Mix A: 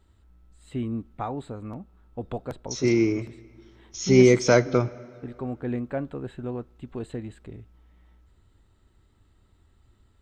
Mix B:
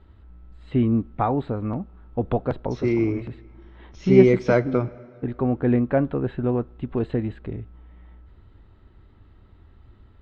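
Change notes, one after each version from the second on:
first voice +10.0 dB
master: add high-frequency loss of the air 310 metres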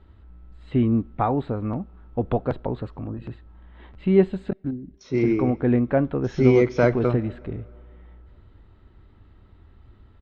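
second voice: entry +2.30 s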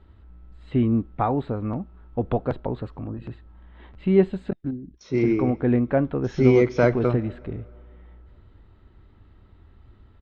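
first voice: send off

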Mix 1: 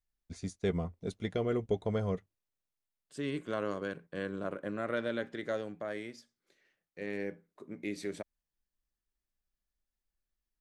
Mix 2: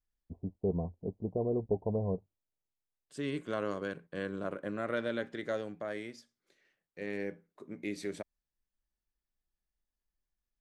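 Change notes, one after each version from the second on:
first voice: add Butterworth low-pass 970 Hz 72 dB per octave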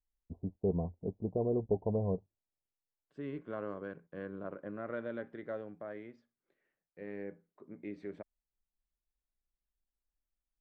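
second voice −5.0 dB
master: add low-pass filter 1,600 Hz 12 dB per octave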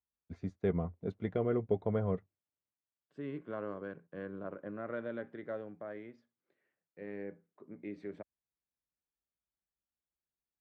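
first voice: remove Butterworth low-pass 970 Hz 72 dB per octave
master: add high-pass filter 70 Hz 24 dB per octave

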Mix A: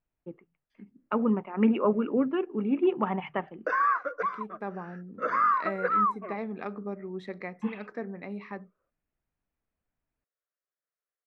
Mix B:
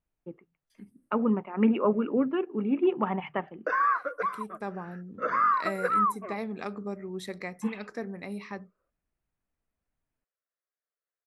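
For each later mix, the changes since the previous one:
second voice: remove band-pass filter 130–2,400 Hz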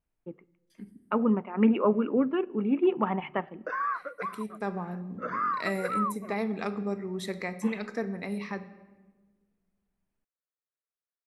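background −5.5 dB
reverb: on, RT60 1.3 s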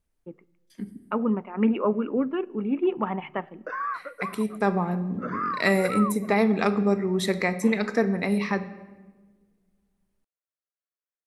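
second voice +9.5 dB

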